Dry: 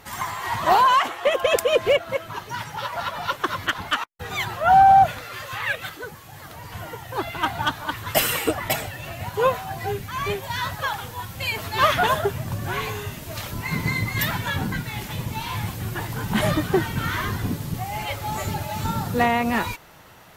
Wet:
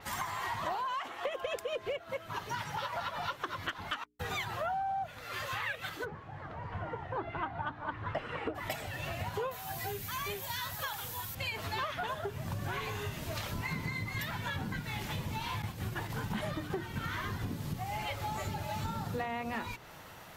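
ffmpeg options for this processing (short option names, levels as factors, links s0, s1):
-filter_complex "[0:a]asplit=3[s0][s1][s2];[s0]afade=t=out:st=6.04:d=0.02[s3];[s1]lowpass=1600,afade=t=in:st=6.04:d=0.02,afade=t=out:st=8.54:d=0.02[s4];[s2]afade=t=in:st=8.54:d=0.02[s5];[s3][s4][s5]amix=inputs=3:normalize=0,asettb=1/sr,asplit=3[s6][s7][s8];[s6]atrim=end=9.514[s9];[s7]atrim=start=9.51:end=11.35,asetpts=PTS-STARTPTS,afade=t=in:d=0.004:c=qsin,afade=t=out:st=1.836:d=0.004:c=qsin,aemphasis=mode=production:type=75fm[s10];[s8]atrim=start=11.346[s11];[s9][s10]acrossfade=d=0.004:c1=hsin:c2=qsin[s12];[s12][s11]acrossfade=d=0.004:c1=qsin:c2=hsin,asettb=1/sr,asplit=3[s13][s14][s15];[s13]atrim=end=15.624[s16];[s14]atrim=start=15.62:end=17.42,asetpts=PTS-STARTPTS,afade=t=in:d=0.004:c=qsin,afade=t=out:st=1.796:d=0.004:c=qsin,agate=range=0.0224:threshold=0.0398:ratio=3:release=100:detection=peak[s17];[s15]atrim=start=17.416[s18];[s16][s17]acrossfade=d=0.004:c1=hsin:c2=qsin[s19];[s19][s18]acrossfade=d=0.004:c1=qsin:c2=hsin,bandreject=f=60:t=h:w=6,bandreject=f=120:t=h:w=6,bandreject=f=180:t=h:w=6,bandreject=f=240:t=h:w=6,bandreject=f=300:t=h:w=6,bandreject=f=360:t=h:w=6,bandreject=f=420:t=h:w=6,acompressor=threshold=0.0282:ratio=12,adynamicequalizer=threshold=0.00178:dfrequency=6800:dqfactor=0.7:tfrequency=6800:tqfactor=0.7:attack=5:release=100:ratio=0.375:range=3:mode=cutabove:tftype=highshelf,volume=0.794"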